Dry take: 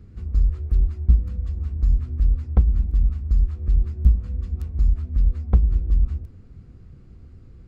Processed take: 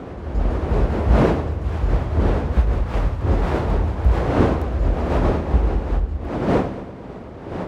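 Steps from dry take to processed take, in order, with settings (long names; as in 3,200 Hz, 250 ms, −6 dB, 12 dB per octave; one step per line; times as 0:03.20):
wind on the microphone 490 Hz −25 dBFS
high-pass filter 48 Hz
echo machine with several playback heads 112 ms, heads first and second, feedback 58%, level −18 dB
delay with pitch and tempo change per echo 244 ms, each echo +5 semitones, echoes 3, each echo −6 dB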